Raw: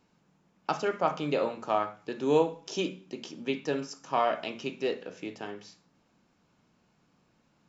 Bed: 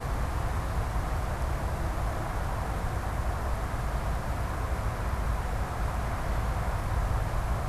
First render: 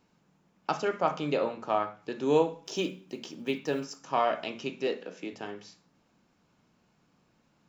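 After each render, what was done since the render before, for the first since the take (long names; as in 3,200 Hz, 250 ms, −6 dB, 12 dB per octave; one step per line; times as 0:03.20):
0:01.37–0:02.03: high-frequency loss of the air 71 metres
0:02.63–0:04.01: one scale factor per block 7 bits
0:04.87–0:05.33: Butterworth high-pass 160 Hz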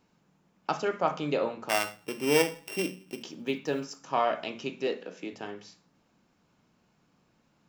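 0:01.69–0:03.23: samples sorted by size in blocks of 16 samples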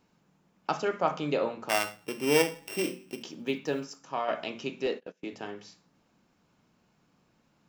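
0:02.59–0:03.12: flutter between parallel walls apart 5 metres, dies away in 0.25 s
0:03.66–0:04.28: fade out, to −7 dB
0:04.86–0:05.32: noise gate −42 dBFS, range −24 dB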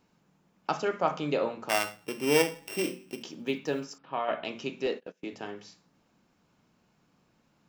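0:03.98–0:04.45: Butterworth low-pass 3,800 Hz 48 dB per octave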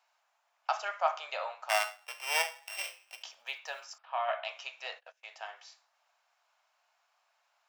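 elliptic high-pass filter 660 Hz, stop band 50 dB
high-shelf EQ 9,600 Hz −4.5 dB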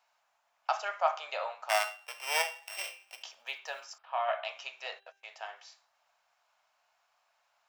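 low-shelf EQ 280 Hz +9.5 dB
hum removal 394.2 Hz, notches 10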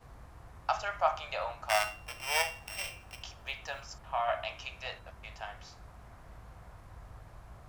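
mix in bed −21.5 dB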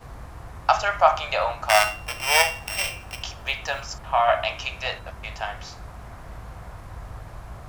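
level +12 dB
brickwall limiter −3 dBFS, peak gain reduction 2.5 dB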